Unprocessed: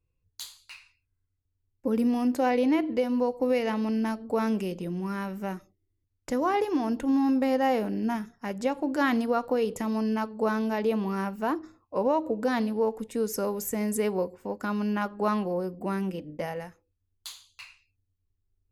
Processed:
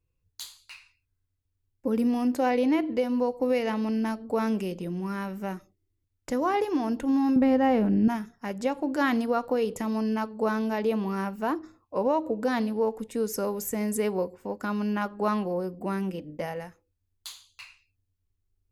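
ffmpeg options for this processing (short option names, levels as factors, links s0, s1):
-filter_complex "[0:a]asettb=1/sr,asplit=3[s0][s1][s2];[s0]atrim=end=7.364[s3];[s1]atrim=start=7.36:end=8.08,asetpts=PTS-STARTPTS,afade=t=in:d=0.004:c=qsin,afade=t=out:st=0.716:d=0.004:c=qsin,bass=f=250:g=12,treble=f=4000:g=-10[s4];[s2]atrim=start=8.076[s5];[s3][s4]acrossfade=d=0.004:c1=hsin:c2=qsin[s6];[s6][s5]acrossfade=d=0.004:c1=qsin:c2=hsin"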